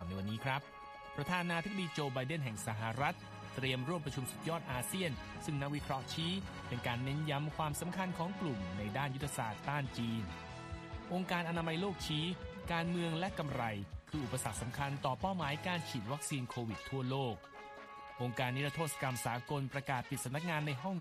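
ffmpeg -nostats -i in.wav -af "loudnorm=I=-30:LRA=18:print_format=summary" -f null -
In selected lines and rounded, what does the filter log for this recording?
Input Integrated:    -39.1 LUFS
Input True Peak:     -19.8 dBTP
Input LRA:             1.6 LU
Input Threshold:     -49.3 LUFS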